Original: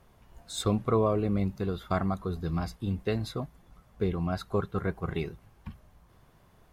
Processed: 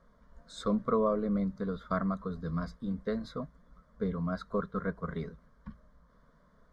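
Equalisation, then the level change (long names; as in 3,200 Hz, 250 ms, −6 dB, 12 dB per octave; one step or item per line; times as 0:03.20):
low-pass filter 4,000 Hz 12 dB per octave
phaser with its sweep stopped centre 530 Hz, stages 8
0.0 dB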